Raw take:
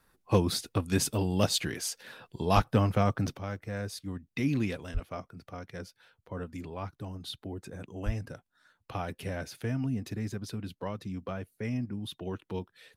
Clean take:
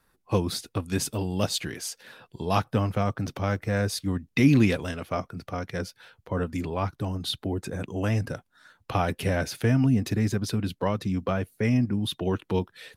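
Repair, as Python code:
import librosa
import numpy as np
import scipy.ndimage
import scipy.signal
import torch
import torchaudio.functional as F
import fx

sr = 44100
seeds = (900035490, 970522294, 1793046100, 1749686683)

y = fx.fix_declip(x, sr, threshold_db=-12.0)
y = fx.fix_deplosive(y, sr, at_s=(2.55, 4.93, 8.05))
y = fx.gain(y, sr, db=fx.steps((0.0, 0.0), (3.36, 10.0)))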